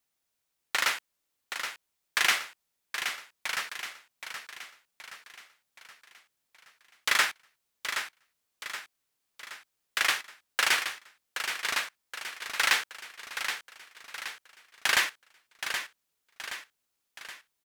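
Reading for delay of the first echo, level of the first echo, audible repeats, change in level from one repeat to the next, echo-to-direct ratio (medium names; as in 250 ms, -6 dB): 773 ms, -8.0 dB, 5, -6.0 dB, -7.0 dB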